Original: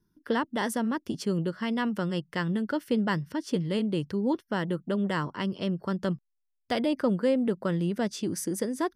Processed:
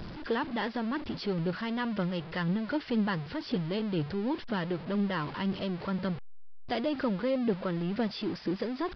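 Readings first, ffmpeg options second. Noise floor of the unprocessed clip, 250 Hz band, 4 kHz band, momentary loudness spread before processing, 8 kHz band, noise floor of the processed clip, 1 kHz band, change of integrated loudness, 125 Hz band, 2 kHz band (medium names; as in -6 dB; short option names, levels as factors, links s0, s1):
-78 dBFS, -3.0 dB, -1.5 dB, 5 LU, no reading, -43 dBFS, -2.5 dB, -3.0 dB, -2.5 dB, -2.0 dB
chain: -af "aeval=exprs='val(0)+0.5*0.0316*sgn(val(0))':c=same,aphaser=in_gain=1:out_gain=1:delay=3.2:decay=0.3:speed=2:type=triangular,aresample=11025,aresample=44100,volume=0.531"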